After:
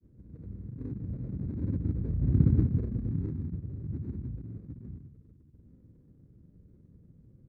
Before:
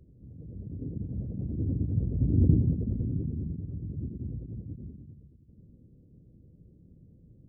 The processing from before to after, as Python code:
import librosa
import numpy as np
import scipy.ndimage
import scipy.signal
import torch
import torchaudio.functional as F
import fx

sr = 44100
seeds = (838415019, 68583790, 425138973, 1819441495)

y = scipy.signal.medfilt(x, 41)
y = fx.granulator(y, sr, seeds[0], grain_ms=100.0, per_s=20.0, spray_ms=100.0, spread_st=0)